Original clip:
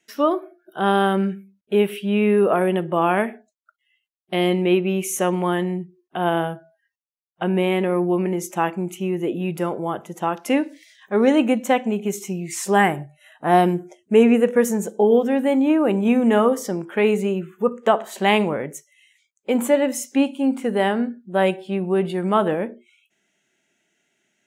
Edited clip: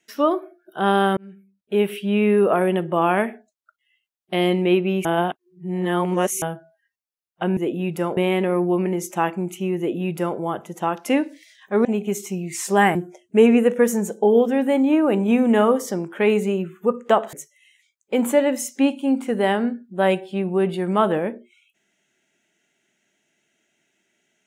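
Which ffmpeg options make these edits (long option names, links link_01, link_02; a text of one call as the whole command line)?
ffmpeg -i in.wav -filter_complex "[0:a]asplit=9[link_01][link_02][link_03][link_04][link_05][link_06][link_07][link_08][link_09];[link_01]atrim=end=1.17,asetpts=PTS-STARTPTS,afade=type=out:start_time=1.166:duration=0.004:curve=hsin[link_10];[link_02]atrim=start=1.17:end=5.052,asetpts=PTS-STARTPTS,afade=type=in:duration=0.75[link_11];[link_03]atrim=start=5.048:end=6.422,asetpts=PTS-STARTPTS,areverse[link_12];[link_04]atrim=start=6.418:end=7.572[link_13];[link_05]atrim=start=9.178:end=9.782[link_14];[link_06]atrim=start=7.568:end=11.252[link_15];[link_07]atrim=start=11.828:end=12.932[link_16];[link_08]atrim=start=13.718:end=18.102[link_17];[link_09]atrim=start=18.688[link_18];[link_10][link_11]concat=n=2:v=0:a=1[link_19];[link_19][link_12]acrossfade=duration=0.004:curve1=hsin:curve2=hsin[link_20];[link_20][link_13]acrossfade=duration=0.004:curve1=hsin:curve2=hsin[link_21];[link_21][link_14]acrossfade=duration=0.004:curve1=hsin:curve2=hsin[link_22];[link_22][link_15]acrossfade=duration=0.004:curve1=hsin:curve2=hsin[link_23];[link_23][link_16]acrossfade=duration=0.004:curve1=hsin:curve2=hsin[link_24];[link_24][link_17]acrossfade=duration=0.004:curve1=hsin:curve2=hsin[link_25];[link_25][link_18]acrossfade=duration=0.004:curve1=hsin:curve2=hsin" out.wav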